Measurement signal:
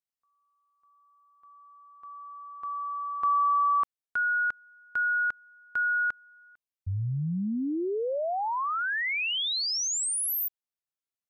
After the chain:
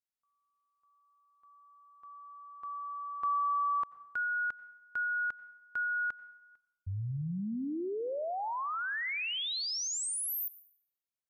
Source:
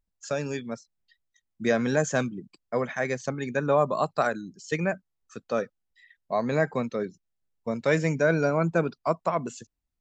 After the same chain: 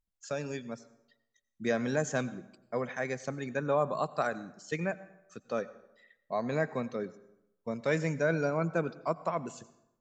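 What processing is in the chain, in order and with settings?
plate-style reverb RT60 0.87 s, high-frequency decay 0.7×, pre-delay 75 ms, DRR 17 dB; gain -6 dB

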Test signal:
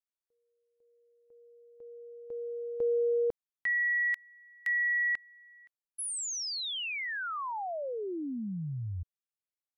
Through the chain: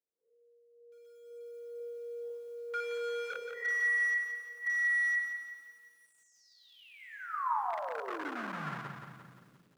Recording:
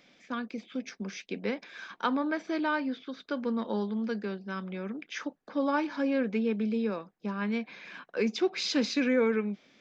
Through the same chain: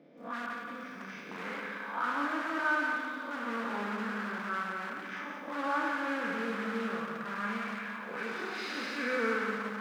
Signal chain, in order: time blur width 0.163 s; resonant low shelf 110 Hz -11.5 dB, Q 3; notches 60/120 Hz; on a send: darkening echo 63 ms, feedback 69%, low-pass 3100 Hz, level -14 dB; on the sum: two-slope reverb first 0.81 s, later 2.6 s, DRR 1.5 dB; in parallel at -5 dB: wrapped overs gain 31 dB; on the sum: auto-wah 430–1400 Hz, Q 2.5, up, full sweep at -31 dBFS; bell 220 Hz +3.5 dB 1.5 oct; lo-fi delay 0.174 s, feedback 55%, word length 12-bit, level -6 dB; gain +6.5 dB

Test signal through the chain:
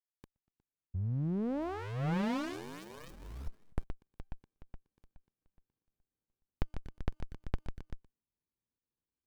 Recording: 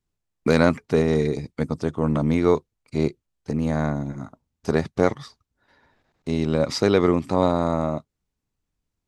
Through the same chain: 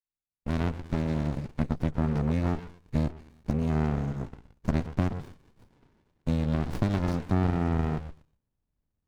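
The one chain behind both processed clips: opening faded in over 1.91 s; compressor, threshold -23 dBFS; delay with a stepping band-pass 0.12 s, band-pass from 790 Hz, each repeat 1.4 oct, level -1 dB; running maximum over 65 samples

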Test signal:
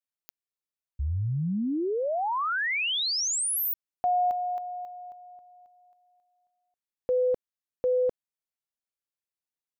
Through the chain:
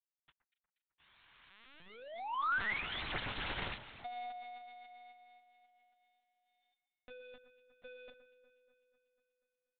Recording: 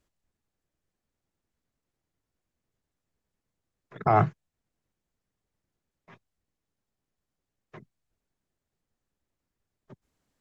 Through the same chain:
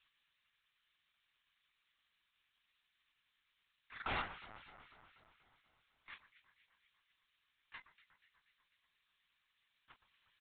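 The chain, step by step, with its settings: G.711 law mismatch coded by mu; HPF 1200 Hz 12 dB/oct; differentiator; in parallel at 0 dB: limiter -27.5 dBFS; on the sum: wrapped overs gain 32.5 dB; air absorption 120 m; doubler 27 ms -8 dB; echo with dull and thin repeats by turns 0.122 s, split 1800 Hz, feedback 77%, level -12 dB; LPC vocoder at 8 kHz pitch kept; gain +5 dB

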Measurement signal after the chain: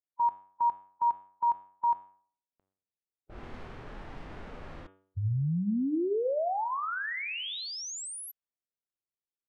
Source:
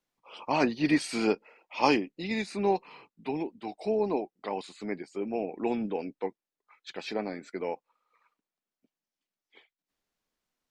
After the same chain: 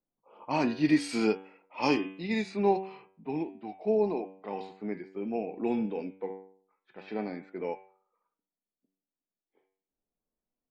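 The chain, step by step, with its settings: de-hum 95.69 Hz, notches 38; low-pass opened by the level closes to 640 Hz, open at -27 dBFS; harmonic-percussive split percussive -10 dB; gain +2 dB

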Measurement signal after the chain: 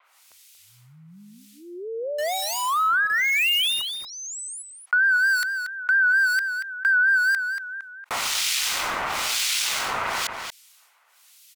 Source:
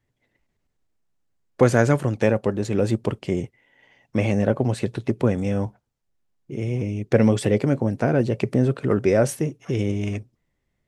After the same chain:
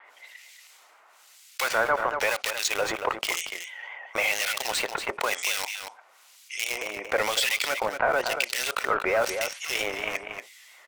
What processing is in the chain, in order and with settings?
Bessel high-pass 1200 Hz, order 4; notch 1700 Hz, Q 9.2; treble ducked by the level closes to 1700 Hz, closed at -26 dBFS; in parallel at -7 dB: companded quantiser 2-bit; on the sum: harmonic tremolo 1 Hz, depth 100%, crossover 1900 Hz; vibrato 4.4 Hz 69 cents; outdoor echo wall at 40 m, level -13 dB; fast leveller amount 50%; gain +6.5 dB

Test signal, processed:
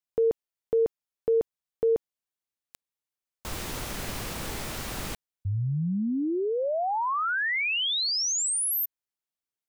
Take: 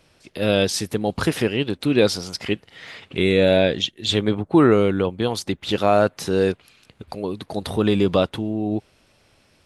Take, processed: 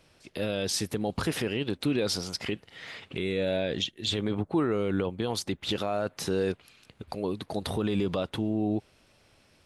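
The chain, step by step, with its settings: limiter -14.5 dBFS; gain -3.5 dB

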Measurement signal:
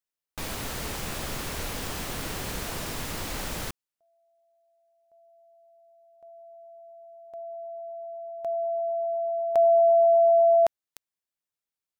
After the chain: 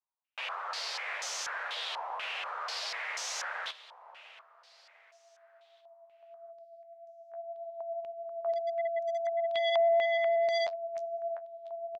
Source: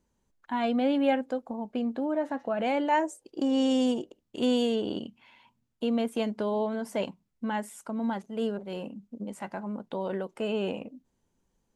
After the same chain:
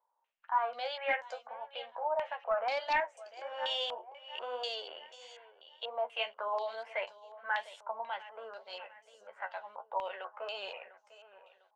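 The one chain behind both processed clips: inverse Chebyshev high-pass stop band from 300 Hz, stop band 40 dB; flange 1.7 Hz, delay 10 ms, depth 3.8 ms, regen +43%; feedback echo 0.7 s, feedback 40%, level -16 dB; overloaded stage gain 28.5 dB; stepped low-pass 4.1 Hz 950–6100 Hz

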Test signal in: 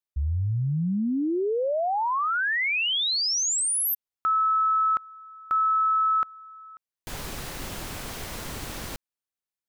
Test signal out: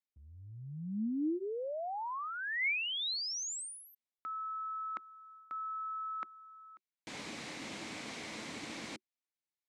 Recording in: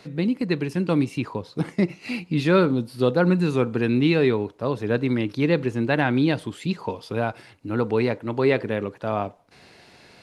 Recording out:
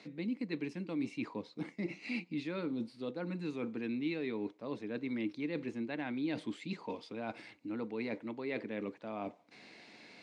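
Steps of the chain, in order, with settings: notch 370 Hz, Q 12; reverse; compressor 6:1, threshold -30 dBFS; reverse; speaker cabinet 190–8000 Hz, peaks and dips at 220 Hz +6 dB, 310 Hz +7 dB, 1400 Hz -3 dB, 2200 Hz +8 dB, 3900 Hz +3 dB; gain -7.5 dB

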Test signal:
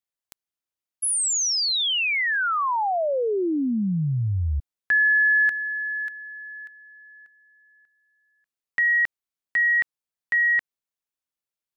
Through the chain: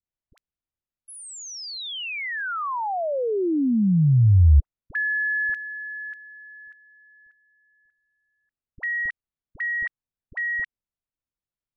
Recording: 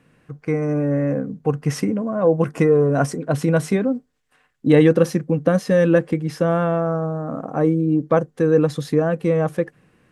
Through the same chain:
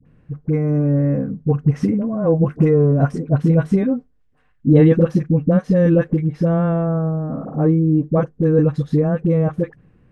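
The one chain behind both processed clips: RIAA curve playback; dispersion highs, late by 57 ms, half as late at 660 Hz; gain -4 dB

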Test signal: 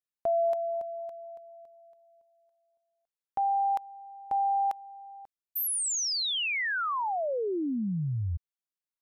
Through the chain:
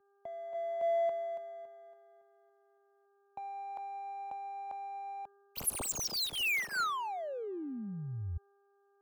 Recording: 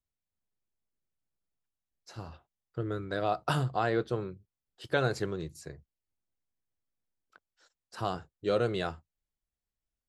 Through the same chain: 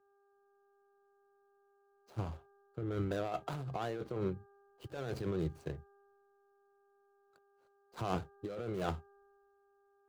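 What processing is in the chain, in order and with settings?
median filter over 25 samples; in parallel at +3 dB: limiter -26.5 dBFS; on the sum: negative-ratio compressor -30 dBFS, ratio -1; buzz 400 Hz, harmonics 4, -55 dBFS -6 dB/oct; three-band expander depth 40%; gain -7.5 dB

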